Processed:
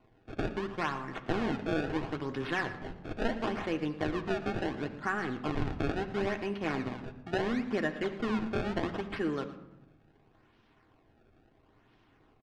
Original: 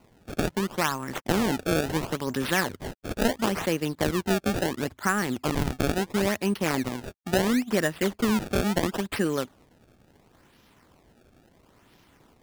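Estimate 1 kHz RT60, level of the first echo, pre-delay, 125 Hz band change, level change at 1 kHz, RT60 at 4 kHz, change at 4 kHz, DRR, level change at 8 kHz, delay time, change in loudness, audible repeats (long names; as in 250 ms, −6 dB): 0.90 s, −16.0 dB, 3 ms, −7.5 dB, −6.0 dB, 0.55 s, −10.5 dB, 3.5 dB, −22.0 dB, 115 ms, −7.0 dB, 1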